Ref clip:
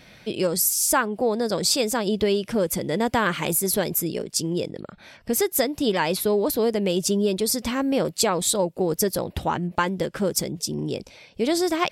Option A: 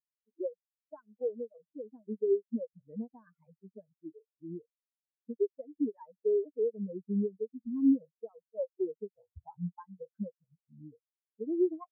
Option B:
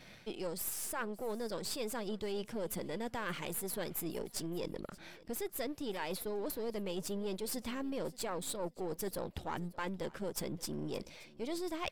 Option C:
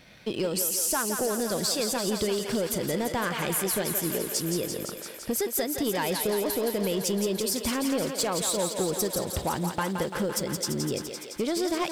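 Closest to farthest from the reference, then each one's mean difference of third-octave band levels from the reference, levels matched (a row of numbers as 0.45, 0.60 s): B, C, A; 5.5, 9.0, 21.5 dB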